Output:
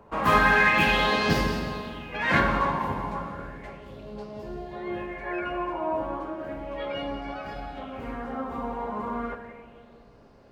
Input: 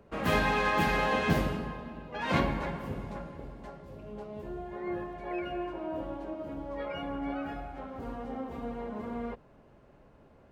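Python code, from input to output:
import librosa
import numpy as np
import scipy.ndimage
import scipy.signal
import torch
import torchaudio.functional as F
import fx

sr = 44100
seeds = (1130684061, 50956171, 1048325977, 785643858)

y = x + 10.0 ** (-14.0 / 20.0) * np.pad(x, (int(184 * sr / 1000.0), 0))[:len(x)]
y = fx.rev_plate(y, sr, seeds[0], rt60_s=2.6, hf_ratio=0.85, predelay_ms=0, drr_db=6.0)
y = fx.bell_lfo(y, sr, hz=0.34, low_hz=950.0, high_hz=5000.0, db=12)
y = y * librosa.db_to_amplitude(2.0)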